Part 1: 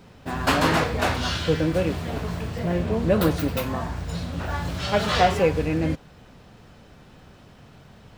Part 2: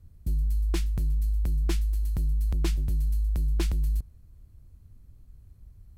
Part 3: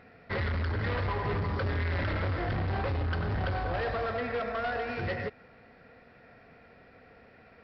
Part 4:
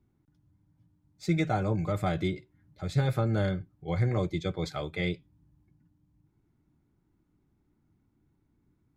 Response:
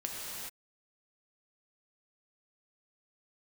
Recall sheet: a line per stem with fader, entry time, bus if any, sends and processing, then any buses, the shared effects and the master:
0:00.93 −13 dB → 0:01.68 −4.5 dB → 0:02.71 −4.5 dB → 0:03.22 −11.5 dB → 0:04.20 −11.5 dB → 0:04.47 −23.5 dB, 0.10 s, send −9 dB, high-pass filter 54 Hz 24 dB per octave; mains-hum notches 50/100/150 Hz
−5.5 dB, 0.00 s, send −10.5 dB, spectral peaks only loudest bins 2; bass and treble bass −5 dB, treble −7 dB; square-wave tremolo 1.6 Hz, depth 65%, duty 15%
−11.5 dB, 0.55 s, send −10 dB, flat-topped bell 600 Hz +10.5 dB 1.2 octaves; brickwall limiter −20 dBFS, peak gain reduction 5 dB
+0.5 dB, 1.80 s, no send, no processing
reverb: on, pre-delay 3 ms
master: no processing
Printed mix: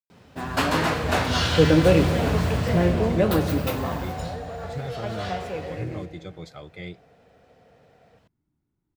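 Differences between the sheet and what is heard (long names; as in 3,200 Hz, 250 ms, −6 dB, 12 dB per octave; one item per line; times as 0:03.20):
stem 1 −13.0 dB → −4.5 dB
stem 2: muted
stem 4 +0.5 dB → −7.0 dB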